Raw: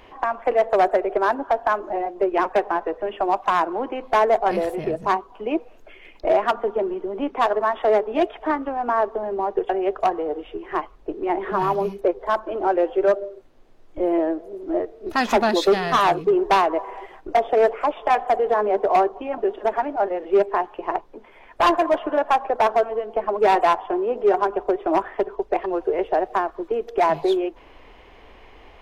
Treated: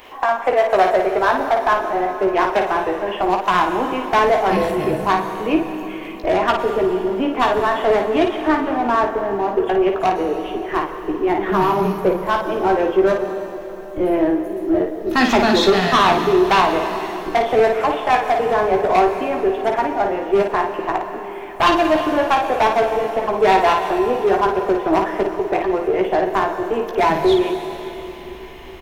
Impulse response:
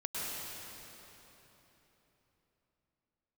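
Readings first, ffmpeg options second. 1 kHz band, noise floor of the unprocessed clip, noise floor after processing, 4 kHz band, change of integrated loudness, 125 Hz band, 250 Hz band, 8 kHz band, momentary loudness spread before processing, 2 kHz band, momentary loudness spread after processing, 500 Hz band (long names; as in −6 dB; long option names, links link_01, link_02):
+3.5 dB, −48 dBFS, −32 dBFS, +8.0 dB, +4.0 dB, +10.5 dB, +6.5 dB, can't be measured, 9 LU, +6.5 dB, 9 LU, +3.5 dB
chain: -filter_complex "[0:a]aemphasis=mode=production:type=bsi,asplit=2[link_01][link_02];[1:a]atrim=start_sample=2205[link_03];[link_02][link_03]afir=irnorm=-1:irlink=0,volume=-11dB[link_04];[link_01][link_04]amix=inputs=2:normalize=0,acrossover=split=5300[link_05][link_06];[link_06]acompressor=threshold=-51dB:ratio=4:attack=1:release=60[link_07];[link_05][link_07]amix=inputs=2:normalize=0,bandreject=frequency=4800:width=18,aecho=1:1:16|55:0.473|0.501,asplit=2[link_08][link_09];[link_09]asoftclip=type=tanh:threshold=-20dB,volume=-4dB[link_10];[link_08][link_10]amix=inputs=2:normalize=0,asubboost=boost=5:cutoff=240"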